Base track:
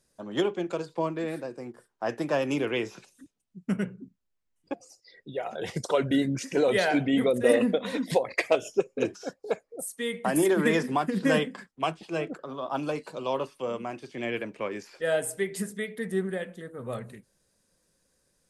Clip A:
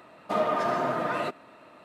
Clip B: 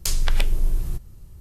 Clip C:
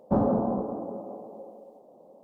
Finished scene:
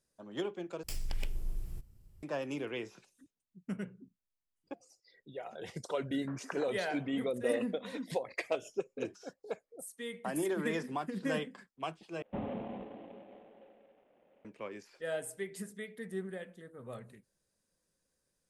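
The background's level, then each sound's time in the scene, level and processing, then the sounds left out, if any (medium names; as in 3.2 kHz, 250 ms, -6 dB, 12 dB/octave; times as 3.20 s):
base track -10.5 dB
0.83 s: replace with B -15 dB + comb filter that takes the minimum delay 0.39 ms
6.22 s: add B -7.5 dB + Chebyshev band-pass 410–1700 Hz, order 4
12.22 s: replace with C -14.5 dB + CVSD coder 16 kbps
not used: A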